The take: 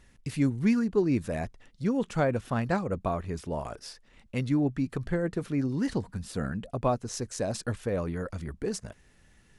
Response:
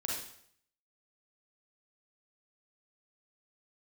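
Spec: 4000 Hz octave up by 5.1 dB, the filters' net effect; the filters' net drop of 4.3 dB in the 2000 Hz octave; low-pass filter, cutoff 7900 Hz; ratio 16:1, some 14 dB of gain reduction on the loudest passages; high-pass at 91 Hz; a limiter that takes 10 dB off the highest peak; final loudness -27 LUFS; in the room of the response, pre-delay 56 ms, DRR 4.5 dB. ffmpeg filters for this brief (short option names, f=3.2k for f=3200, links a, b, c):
-filter_complex "[0:a]highpass=91,lowpass=7.9k,equalizer=f=2k:t=o:g=-8,equalizer=f=4k:t=o:g=9,acompressor=threshold=-34dB:ratio=16,alimiter=level_in=6.5dB:limit=-24dB:level=0:latency=1,volume=-6.5dB,asplit=2[a][b];[1:a]atrim=start_sample=2205,adelay=56[c];[b][c]afir=irnorm=-1:irlink=0,volume=-7.5dB[d];[a][d]amix=inputs=2:normalize=0,volume=12.5dB"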